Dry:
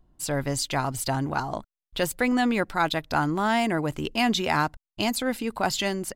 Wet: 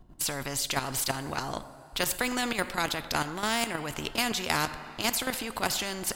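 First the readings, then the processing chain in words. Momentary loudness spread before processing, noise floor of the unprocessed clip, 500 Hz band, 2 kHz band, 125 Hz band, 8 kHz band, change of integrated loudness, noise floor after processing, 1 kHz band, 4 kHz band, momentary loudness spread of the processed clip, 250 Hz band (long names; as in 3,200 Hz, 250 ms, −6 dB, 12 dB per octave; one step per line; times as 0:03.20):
6 LU, below −85 dBFS, −6.5 dB, −2.5 dB, −8.0 dB, +2.5 dB, −4.0 dB, −49 dBFS, −5.5 dB, 0.0 dB, 6 LU, −9.0 dB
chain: output level in coarse steps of 12 dB
coupled-rooms reverb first 0.46 s, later 3 s, from −17 dB, DRR 16 dB
every bin compressed towards the loudest bin 2 to 1
level +4 dB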